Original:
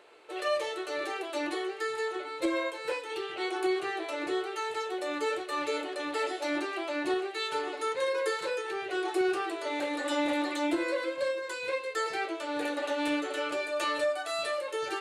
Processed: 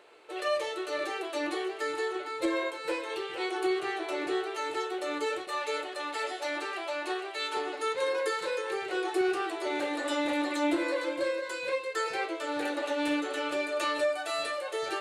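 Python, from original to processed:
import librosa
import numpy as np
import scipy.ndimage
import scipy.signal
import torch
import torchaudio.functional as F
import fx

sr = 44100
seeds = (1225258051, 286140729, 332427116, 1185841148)

y = fx.highpass(x, sr, hz=490.0, slope=12, at=(5.47, 7.57))
y = y + 10.0 ** (-10.0 / 20.0) * np.pad(y, (int(460 * sr / 1000.0), 0))[:len(y)]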